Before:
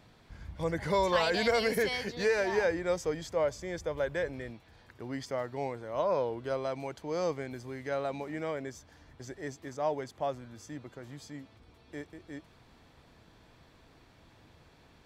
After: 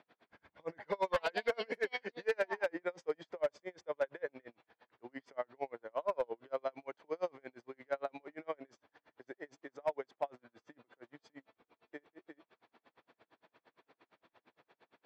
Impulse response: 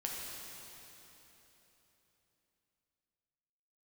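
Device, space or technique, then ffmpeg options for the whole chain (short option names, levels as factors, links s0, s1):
helicopter radio: -af "highpass=380,lowpass=2700,aeval=exprs='val(0)*pow(10,-37*(0.5-0.5*cos(2*PI*8.7*n/s))/20)':c=same,asoftclip=type=hard:threshold=0.0473,volume=1.19"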